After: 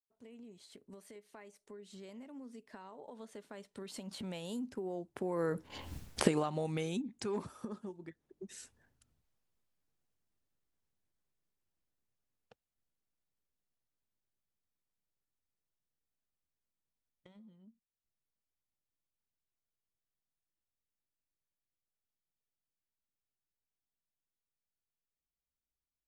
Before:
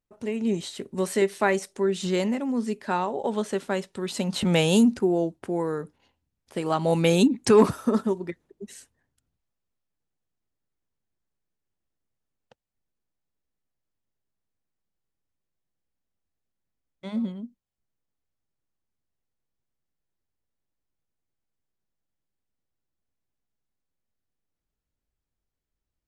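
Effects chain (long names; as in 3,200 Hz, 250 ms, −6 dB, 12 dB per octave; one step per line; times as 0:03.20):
camcorder AGC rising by 51 dB per second
source passing by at 0:05.95, 17 m/s, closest 1.1 metres
level +5 dB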